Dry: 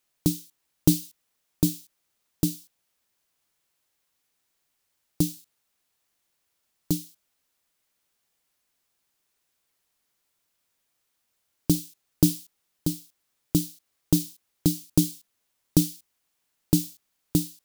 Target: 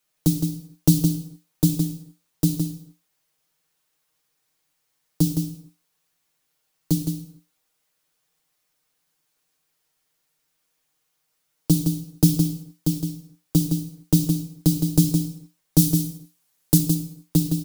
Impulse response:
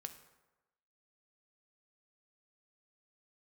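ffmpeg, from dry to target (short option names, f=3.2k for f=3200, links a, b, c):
-filter_complex "[0:a]asettb=1/sr,asplit=3[a][b][c];[a]atrim=end=15.784[d];[b]atrim=start=15.78:end=16.78,asetpts=PTS-STARTPTS,afade=t=in:d=0.004:c=qsin,afade=t=out:st=0.996:d=0.004:c=qsin,equalizer=f=13k:t=o:w=1.8:g=7[e];[c]atrim=start=16.776[f];[d][e]acrossfade=d=0.004:c1=hsin:c2=qsin[g];[g][f]acrossfade=d=0.004:c1=qsin:c2=hsin,aecho=1:1:164:0.447[h];[1:a]atrim=start_sample=2205,afade=t=out:st=0.37:d=0.01,atrim=end_sample=16758[i];[h][i]afir=irnorm=-1:irlink=0,acrossover=split=210|3000[j][k][l];[k]acompressor=threshold=-29dB:ratio=6[m];[j][m][l]amix=inputs=3:normalize=0,aecho=1:1:6.5:0.65,volume=4.5dB"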